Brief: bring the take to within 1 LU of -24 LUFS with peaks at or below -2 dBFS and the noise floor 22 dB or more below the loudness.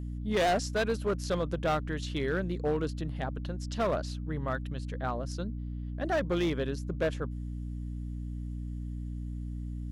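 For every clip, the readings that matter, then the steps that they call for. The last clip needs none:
clipped 1.7%; flat tops at -23.0 dBFS; hum 60 Hz; harmonics up to 300 Hz; hum level -34 dBFS; loudness -33.0 LUFS; peak -23.0 dBFS; loudness target -24.0 LUFS
-> clip repair -23 dBFS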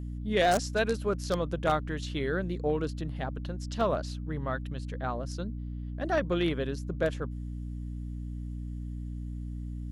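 clipped 0.0%; hum 60 Hz; harmonics up to 300 Hz; hum level -34 dBFS
-> de-hum 60 Hz, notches 5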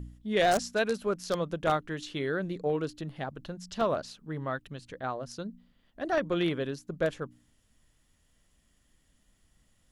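hum none; loudness -32.0 LUFS; peak -13.5 dBFS; loudness target -24.0 LUFS
-> gain +8 dB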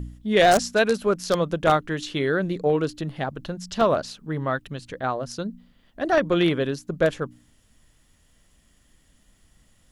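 loudness -24.0 LUFS; peak -5.5 dBFS; noise floor -61 dBFS

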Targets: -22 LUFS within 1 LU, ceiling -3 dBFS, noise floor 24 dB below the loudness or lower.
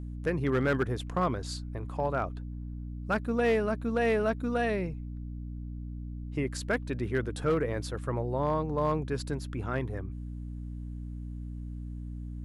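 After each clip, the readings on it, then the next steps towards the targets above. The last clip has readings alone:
clipped 0.4%; flat tops at -20.0 dBFS; hum 60 Hz; harmonics up to 300 Hz; hum level -36 dBFS; loudness -32.0 LUFS; peak -20.0 dBFS; loudness target -22.0 LUFS
-> clip repair -20 dBFS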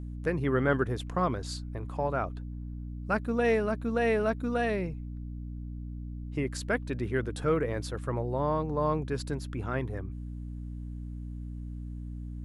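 clipped 0.0%; hum 60 Hz; harmonics up to 300 Hz; hum level -36 dBFS
-> notches 60/120/180/240/300 Hz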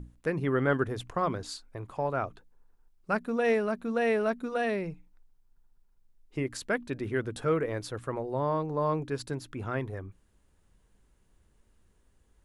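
hum none; loudness -31.0 LUFS; peak -13.0 dBFS; loudness target -22.0 LUFS
-> gain +9 dB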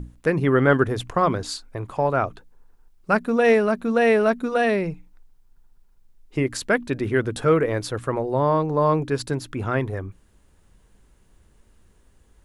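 loudness -22.0 LUFS; peak -4.0 dBFS; noise floor -58 dBFS

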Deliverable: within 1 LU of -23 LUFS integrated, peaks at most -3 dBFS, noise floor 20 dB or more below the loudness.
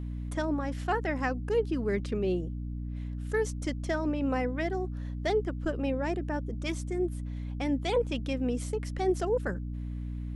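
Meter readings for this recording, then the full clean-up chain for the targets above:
hum 60 Hz; harmonics up to 300 Hz; hum level -33 dBFS; loudness -32.0 LUFS; peak -16.5 dBFS; loudness target -23.0 LUFS
-> de-hum 60 Hz, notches 5; gain +9 dB

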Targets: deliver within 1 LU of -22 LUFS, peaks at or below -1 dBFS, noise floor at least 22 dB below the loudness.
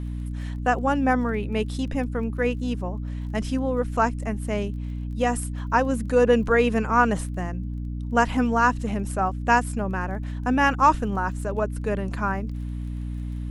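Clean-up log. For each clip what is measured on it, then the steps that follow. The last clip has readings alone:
ticks 22/s; hum 60 Hz; harmonics up to 300 Hz; hum level -28 dBFS; loudness -24.5 LUFS; peak -5.5 dBFS; loudness target -22.0 LUFS
-> de-click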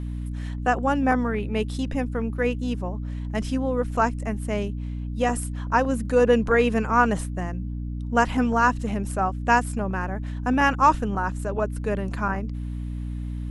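ticks 0/s; hum 60 Hz; harmonics up to 300 Hz; hum level -28 dBFS
-> de-hum 60 Hz, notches 5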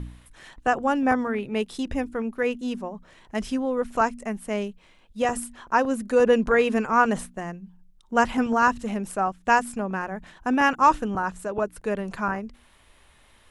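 hum none; loudness -24.5 LUFS; peak -5.5 dBFS; loudness target -22.0 LUFS
-> gain +2.5 dB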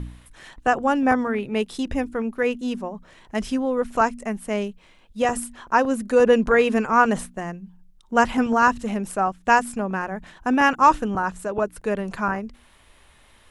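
loudness -22.0 LUFS; peak -3.0 dBFS; noise floor -54 dBFS

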